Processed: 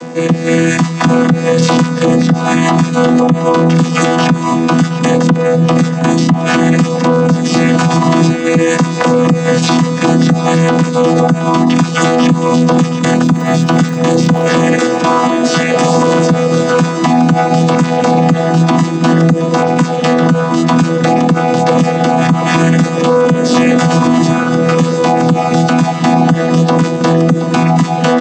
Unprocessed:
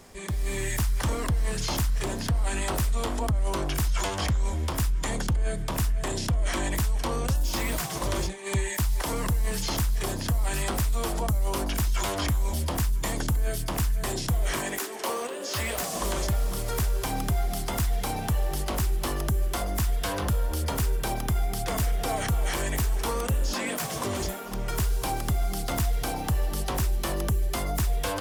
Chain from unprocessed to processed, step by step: chord vocoder bare fifth, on E3; 13.15–14.54 crackle 74/s -51 dBFS; feedback echo 0.72 s, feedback 51%, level -16 dB; maximiser +28.5 dB; gain -1 dB

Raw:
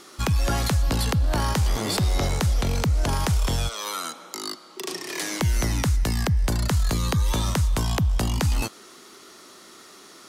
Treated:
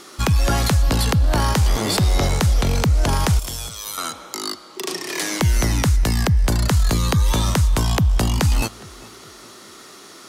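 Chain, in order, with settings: 3.39–3.98 pre-emphasis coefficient 0.8; tape echo 0.412 s, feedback 58%, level -20.5 dB; gain +5 dB

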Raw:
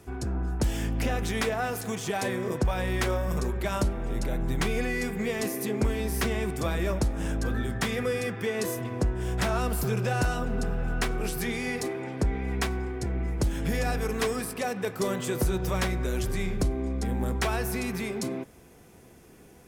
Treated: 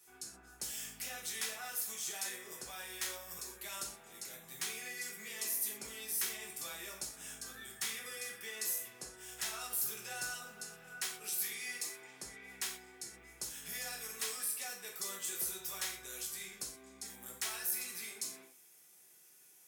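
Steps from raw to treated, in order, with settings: differentiator; non-linear reverb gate 0.15 s falling, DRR -2 dB; gain -4 dB

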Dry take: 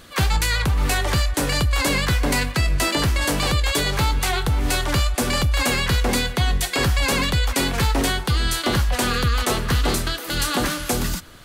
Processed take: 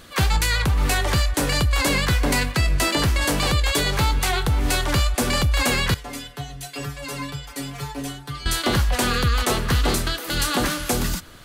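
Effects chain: 5.94–8.46 metallic resonator 140 Hz, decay 0.27 s, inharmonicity 0.002

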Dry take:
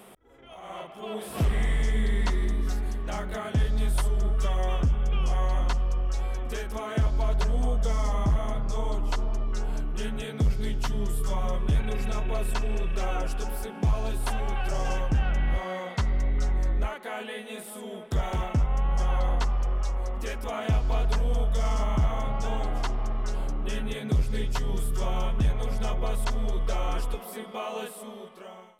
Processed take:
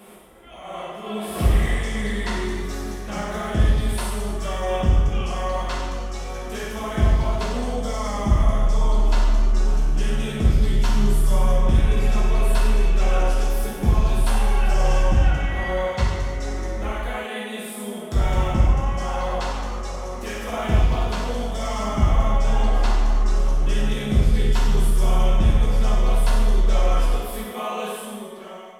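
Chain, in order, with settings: non-linear reverb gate 0.4 s falling, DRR -5.5 dB

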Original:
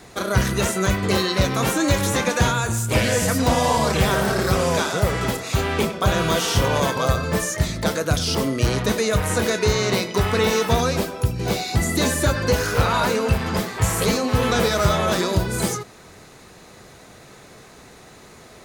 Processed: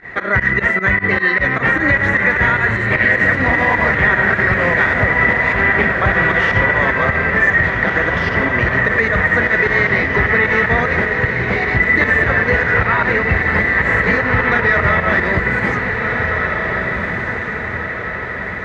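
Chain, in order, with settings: in parallel at +1 dB: compressor, threshold -29 dBFS, peak gain reduction 15 dB; on the sum: synth low-pass 1900 Hz, resonance Q 14; pump 152 bpm, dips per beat 2, -21 dB, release 93 ms; on a send: diffused feedback echo 1.661 s, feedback 54%, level -4.5 dB; on the sum: maximiser +2 dB; gain -3 dB

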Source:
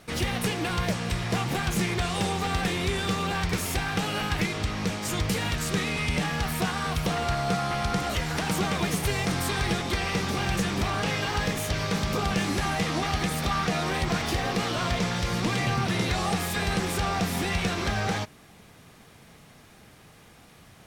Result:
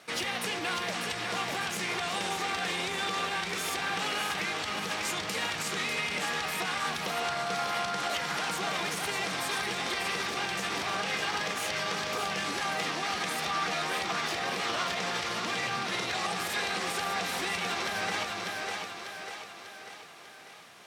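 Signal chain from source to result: split-band echo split 320 Hz, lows 0.364 s, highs 0.595 s, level -6 dB; limiter -20.5 dBFS, peak gain reduction 7 dB; weighting filter A

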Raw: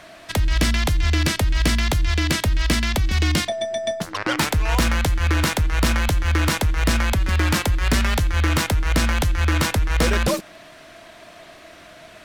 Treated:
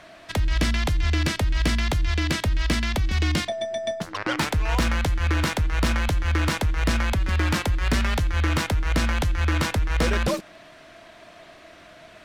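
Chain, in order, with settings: high shelf 7800 Hz -8.5 dB; gain -3 dB

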